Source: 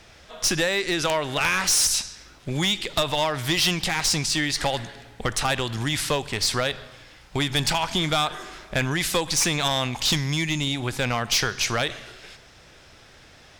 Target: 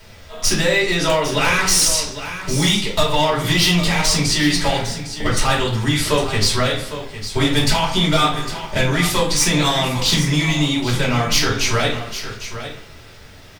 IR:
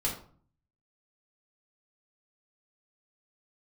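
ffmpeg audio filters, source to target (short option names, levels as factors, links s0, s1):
-filter_complex "[0:a]aecho=1:1:806:0.266[s0];[1:a]atrim=start_sample=2205[s1];[s0][s1]afir=irnorm=-1:irlink=0,acrusher=bits=8:mix=0:aa=0.000001"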